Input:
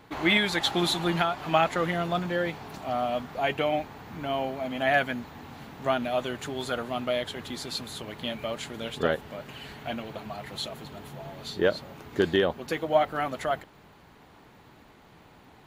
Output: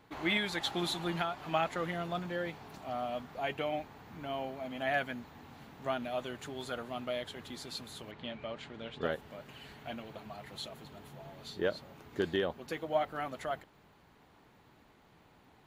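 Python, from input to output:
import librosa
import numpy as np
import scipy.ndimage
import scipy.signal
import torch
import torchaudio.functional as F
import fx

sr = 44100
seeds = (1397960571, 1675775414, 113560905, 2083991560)

y = fx.lowpass(x, sr, hz=3800.0, slope=12, at=(8.11, 9.03))
y = y * librosa.db_to_amplitude(-8.5)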